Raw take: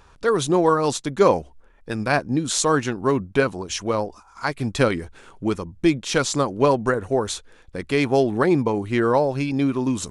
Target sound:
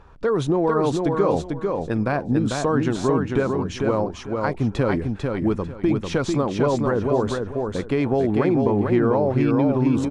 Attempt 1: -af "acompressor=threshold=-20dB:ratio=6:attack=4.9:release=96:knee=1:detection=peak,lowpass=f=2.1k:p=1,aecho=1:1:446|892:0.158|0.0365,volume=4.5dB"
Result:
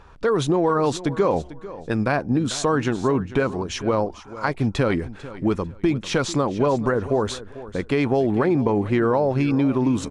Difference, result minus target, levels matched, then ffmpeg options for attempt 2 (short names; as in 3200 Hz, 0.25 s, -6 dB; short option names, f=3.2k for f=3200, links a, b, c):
echo-to-direct -12 dB; 2000 Hz band +3.0 dB
-af "acompressor=threshold=-20dB:ratio=6:attack=4.9:release=96:knee=1:detection=peak,lowpass=f=980:p=1,aecho=1:1:446|892|1338:0.631|0.145|0.0334,volume=4.5dB"